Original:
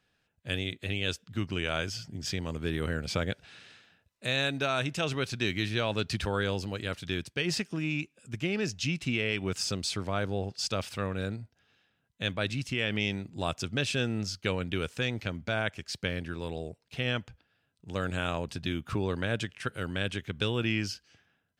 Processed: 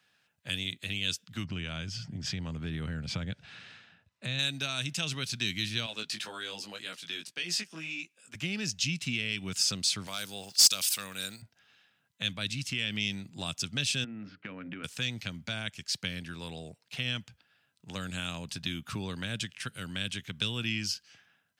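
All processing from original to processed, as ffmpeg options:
ffmpeg -i in.wav -filter_complex "[0:a]asettb=1/sr,asplit=3[link_01][link_02][link_03];[link_01]atrim=end=1.444[link_04];[link_02]atrim=start=1.44:end=4.39,asetpts=PTS-STARTPTS,afade=type=in:duration=0.004:curve=qsin,afade=type=out:start_time=2.946:duration=0.004:curve=qsin,highpass=63,aemphasis=mode=reproduction:type=bsi,acompressor=threshold=-34dB:ratio=1.5:attack=3.2:release=140:knee=1:detection=peak[link_05];[link_03]atrim=start=4.386[link_06];[link_04][link_05]acrossfade=duration=0.004:curve1=hsin:curve2=qsin[link_07];[link_07][link_06]acrossfade=duration=0.004:curve1=qsin:curve2=hsin,asettb=1/sr,asplit=3[link_08][link_09][link_10];[link_08]atrim=end=5.864[link_11];[link_09]atrim=start=5.86:end=8.35,asetpts=PTS-STARTPTS,afade=type=in:duration=0.004:curve=qsin,afade=type=out:start_time=2.486:duration=0.004:curve=qsin,highpass=290,flanger=delay=17:depth=2.5:speed=1.9[link_12];[link_10]atrim=start=8.346[link_13];[link_11][link_12]acrossfade=duration=0.004:curve1=hsin:curve2=qsin[link_14];[link_14][link_13]acrossfade=duration=0.004:curve1=qsin:curve2=hsin,asettb=1/sr,asplit=3[link_15][link_16][link_17];[link_15]atrim=end=10.074[link_18];[link_16]atrim=start=10.07:end=11.42,asetpts=PTS-STARTPTS,afade=type=in:duration=0.004:curve=qsin,afade=type=out:start_time=1.346:duration=0.004:curve=qsin,aemphasis=mode=production:type=riaa,aeval=exprs='clip(val(0),-1,0.0891)':channel_layout=same[link_19];[link_17]atrim=start=11.416[link_20];[link_18][link_19]acrossfade=duration=0.004:curve1=hsin:curve2=qsin[link_21];[link_21][link_20]acrossfade=duration=0.004:curve1=qsin:curve2=hsin,asettb=1/sr,asplit=3[link_22][link_23][link_24];[link_22]atrim=end=14.044[link_25];[link_23]atrim=start=14.04:end=14.84,asetpts=PTS-STARTPTS,afade=type=in:duration=0.004:curve=qsin,afade=type=out:start_time=0.796:duration=0.004:curve=qsin,highpass=160,equalizer=frequency=270:width_type=q:width=4:gain=9,equalizer=frequency=420:width_type=q:width=4:gain=-4,equalizer=frequency=880:width_type=q:width=4:gain=-8,lowpass=frequency=2100:width=0.5412,lowpass=frequency=2100:width=1.3066,bandreject=frequency=60:width_type=h:width=6,bandreject=frequency=120:width_type=h:width=6,bandreject=frequency=180:width_type=h:width=6,bandreject=frequency=240:width_type=h:width=6,bandreject=frequency=300:width_type=h:width=6,bandreject=frequency=360:width_type=h:width=6,bandreject=frequency=420:width_type=h:width=6,bandreject=frequency=480:width_type=h:width=6,bandreject=frequency=540:width_type=h:width=6,acompressor=threshold=-34dB:ratio=4:attack=3.2:release=140:knee=1:detection=peak[link_26];[link_24]atrim=start=14.836[link_27];[link_25][link_26]acrossfade=duration=0.004:curve1=hsin:curve2=qsin[link_28];[link_28][link_27]acrossfade=duration=0.004:curve1=qsin:curve2=hsin,highpass=180,equalizer=frequency=370:width=0.81:gain=-11,acrossover=split=290|3000[link_29][link_30][link_31];[link_30]acompressor=threshold=-51dB:ratio=3[link_32];[link_29][link_32][link_31]amix=inputs=3:normalize=0,volume=6dB" out.wav

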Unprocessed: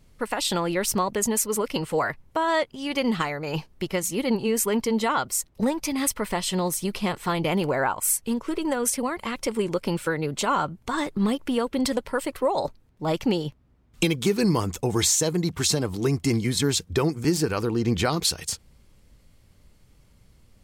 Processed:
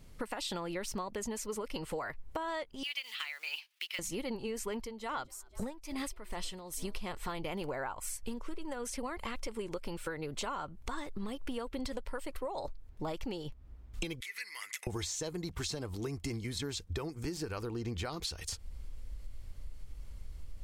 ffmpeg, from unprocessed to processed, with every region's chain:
ffmpeg -i in.wav -filter_complex "[0:a]asettb=1/sr,asplit=3[link_01][link_02][link_03];[link_01]atrim=end=2.834[link_04];[link_02]atrim=start=2.83:end=3.99,asetpts=PTS-STARTPTS,afade=type=in:duration=0.004:curve=qsin,afade=type=out:start_time=1.156:duration=0.004:curve=qsin,equalizer=frequency=7500:width=1:gain=-9,acrusher=bits=7:mode=log:mix=0:aa=0.000001,highpass=frequency=2700:width_type=q:width=1.8[link_05];[link_03]atrim=start=3.986[link_06];[link_04][link_05]acrossfade=duration=0.004:curve1=hsin:curve2=qsin[link_07];[link_07][link_06]acrossfade=duration=0.004:curve1=qsin:curve2=hsin,asettb=1/sr,asplit=3[link_08][link_09][link_10];[link_08]atrim=end=4.784[link_11];[link_09]atrim=start=4.78:end=6.94,asetpts=PTS-STARTPTS,afade=type=in:duration=0.004:curve=qsin,afade=type=out:start_time=2.156:duration=0.004:curve=qsin,asplit=3[link_12][link_13][link_14];[link_13]adelay=249,afreqshift=84,volume=-24dB[link_15];[link_14]adelay=498,afreqshift=168,volume=-33.4dB[link_16];[link_12][link_15][link_16]amix=inputs=3:normalize=0,atrim=end_sample=95256,aeval=exprs='val(0)*pow(10,-18*(0.5-0.5*cos(2*PI*2.4*n/s))/20)':channel_layout=same[link_17];[link_10]atrim=start=6.936[link_18];[link_11][link_17]acrossfade=duration=0.004:curve1=hsin:curve2=qsin[link_19];[link_19][link_18]acrossfade=duration=0.004:curve1=qsin:curve2=hsin,asettb=1/sr,asplit=3[link_20][link_21][link_22];[link_20]atrim=end=14.204[link_23];[link_21]atrim=start=14.2:end=14.87,asetpts=PTS-STARTPTS,afade=type=in:duration=0.004:curve=qsin,afade=type=out:start_time=0.666:duration=0.004:curve=qsin,equalizer=frequency=11000:width_type=o:width=0.24:gain=11.5,acompressor=threshold=-32dB:ratio=12:attack=3.2:release=140:knee=1:detection=peak,highpass=frequency=2000:width_type=q:width=14[link_24];[link_22]atrim=start=14.866[link_25];[link_23][link_24]acrossfade=duration=0.004:curve1=hsin:curve2=qsin[link_26];[link_26][link_25]acrossfade=duration=0.004:curve1=qsin:curve2=hsin,acrossover=split=6600[link_27][link_28];[link_28]acompressor=threshold=-36dB:ratio=4:attack=1:release=60[link_29];[link_27][link_29]amix=inputs=2:normalize=0,asubboost=boost=8:cutoff=54,acompressor=threshold=-37dB:ratio=6,volume=1dB" out.wav

